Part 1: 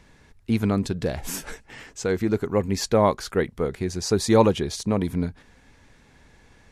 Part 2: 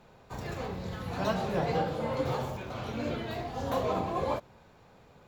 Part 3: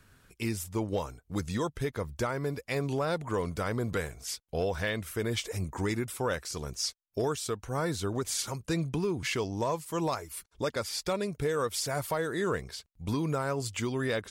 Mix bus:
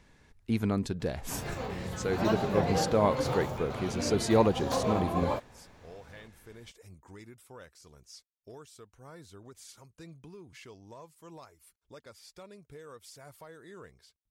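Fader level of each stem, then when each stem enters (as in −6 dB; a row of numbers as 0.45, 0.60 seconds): −6.5, 0.0, −18.5 decibels; 0.00, 1.00, 1.30 seconds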